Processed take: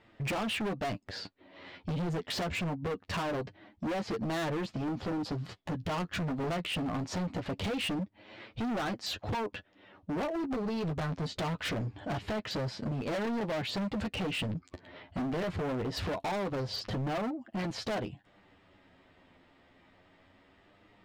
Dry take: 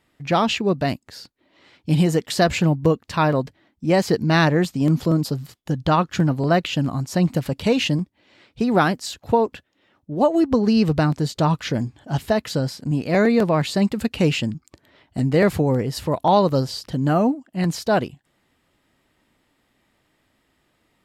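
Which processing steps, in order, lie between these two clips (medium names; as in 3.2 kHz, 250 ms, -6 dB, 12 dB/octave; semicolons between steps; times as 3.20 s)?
low-pass 3.5 kHz 12 dB/octave; peaking EQ 650 Hz +3 dB 0.77 oct; compression 16:1, threshold -26 dBFS, peak gain reduction 17 dB; flange 0.23 Hz, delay 8.8 ms, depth 2.9 ms, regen +18%; hard clipper -38.5 dBFS, distortion -5 dB; trim +7.5 dB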